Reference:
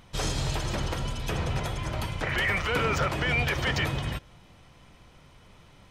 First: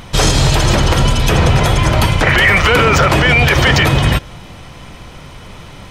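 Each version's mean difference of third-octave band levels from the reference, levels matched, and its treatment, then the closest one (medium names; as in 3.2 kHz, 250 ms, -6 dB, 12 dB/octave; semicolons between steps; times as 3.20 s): 2.0 dB: loudness maximiser +21 dB; trim -1 dB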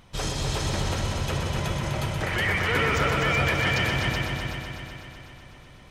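5.0 dB: multi-head delay 125 ms, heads all three, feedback 59%, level -7 dB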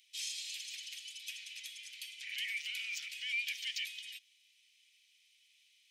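22.5 dB: steep high-pass 2.3 kHz 48 dB/octave; trim -5 dB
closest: first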